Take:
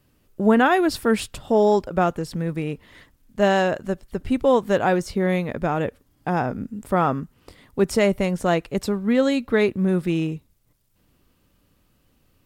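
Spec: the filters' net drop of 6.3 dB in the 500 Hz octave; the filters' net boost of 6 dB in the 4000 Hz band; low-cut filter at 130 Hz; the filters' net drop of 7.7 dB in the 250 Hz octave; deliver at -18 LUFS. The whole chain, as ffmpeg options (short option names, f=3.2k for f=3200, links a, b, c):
-af "highpass=130,equalizer=f=250:t=o:g=-8.5,equalizer=f=500:t=o:g=-5.5,equalizer=f=4k:t=o:g=8,volume=8dB"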